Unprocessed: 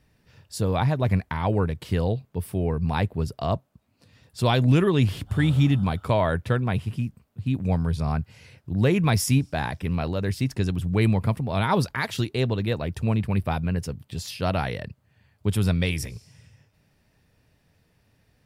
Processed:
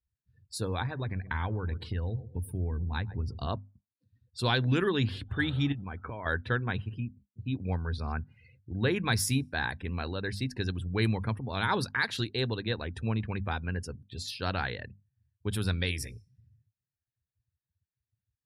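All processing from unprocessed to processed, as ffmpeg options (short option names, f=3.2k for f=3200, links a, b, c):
-filter_complex "[0:a]asettb=1/sr,asplit=3[a][b][c];[a]atrim=end=0.664[d];[b]atrim=start=0.66:end=3.47,asetpts=PTS-STARTPTS,afade=t=in:d=0.004:c=qsin,afade=t=out:st=2.806:d=0.004:c=qsin,asubboost=boost=4.5:cutoff=220,aecho=1:1:120|240|360:0.112|0.046|0.0189,atrim=end_sample=123921,acompressor=threshold=-20dB:ratio=12:attack=3.2:release=140:knee=1:detection=peak[e];[c]atrim=start=3.466[f];[d][e]acrossfade=d=0.004:c1=hsin:c2=qsin[g];[g][f]acrossfade=d=0.004:c1=qsin:c2=hsin,asettb=1/sr,asplit=3[h][i][j];[h]atrim=end=5.724[k];[i]atrim=start=5.72:end=6.26,asetpts=PTS-STARTPTS,afade=t=in:d=0.004:c=qsin,afade=t=out:st=0.536:d=0.004:c=qsin,lowpass=f=3k:w=0.5412,lowpass=f=3k:w=1.3066,acompressor=threshold=-26dB:ratio=16:attack=3.2:release=140:knee=1:detection=peak[l];[j]atrim=start=6.256[m];[k][l]acrossfade=d=0.004:c1=hsin:c2=qsin[n];[n][m]acrossfade=d=0.004:c1=qsin:c2=hsin,bandreject=f=50:t=h:w=6,bandreject=f=100:t=h:w=6,bandreject=f=150:t=h:w=6,bandreject=f=200:t=h:w=6,bandreject=f=250:t=h:w=6,afftdn=nr=33:nf=-46,equalizer=f=160:t=o:w=0.33:g=-11,equalizer=f=630:t=o:w=0.33:g=-7,equalizer=f=1.6k:t=o:w=0.33:g=9,equalizer=f=4k:t=o:w=0.33:g=9,equalizer=f=10k:t=o:w=0.33:g=4,volume=-5.5dB"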